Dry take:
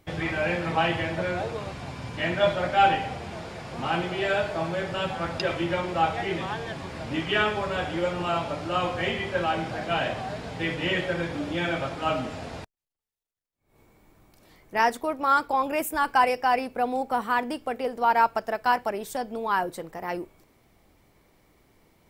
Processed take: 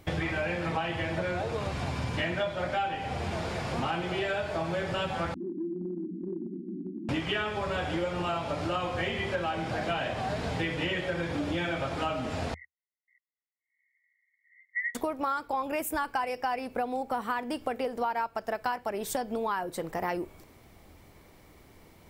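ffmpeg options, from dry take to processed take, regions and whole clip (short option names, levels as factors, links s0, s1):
-filter_complex "[0:a]asettb=1/sr,asplit=3[s0][s1][s2];[s0]atrim=end=5.344[s3];[s1]atrim=start=5.34:end=7.09,asetpts=PTS-STARTPTS,afade=t=in:d=0.004:c=qsin,afade=t=out:st=1.746:d=0.004:c=qsin,asuperpass=centerf=260:order=20:qfactor=1.3,acompressor=threshold=0.0141:ratio=5:attack=3.2:release=140:knee=1:detection=peak[s4];[s2]atrim=start=7.086[s5];[s3][s4]acrossfade=d=0.004:c1=hsin:c2=qsin[s6];[s6][s5]acrossfade=d=0.004:c1=qsin:c2=hsin,asettb=1/sr,asplit=3[s7][s8][s9];[s7]atrim=end=12.544[s10];[s8]atrim=start=12.54:end=14.95,asetpts=PTS-STARTPTS,afade=t=in:d=0.004:c=qsin,afade=t=out:st=2.406:d=0.004:c=qsin,asuperpass=centerf=2000:order=12:qfactor=6.6,aecho=1:1:533:0.133,atrim=end_sample=106281[s11];[s9]atrim=start=14.946[s12];[s10][s11]acrossfade=d=0.004:c1=hsin:c2=qsin[s13];[s13][s12]acrossfade=d=0.004:c1=qsin:c2=hsin,equalizer=f=80:w=3.8:g=6,acompressor=threshold=0.0224:ratio=10,volume=1.88"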